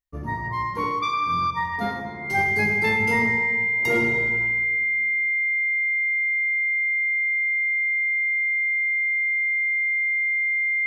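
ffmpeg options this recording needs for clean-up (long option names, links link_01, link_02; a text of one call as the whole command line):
ffmpeg -i in.wav -af "bandreject=frequency=2100:width=30" out.wav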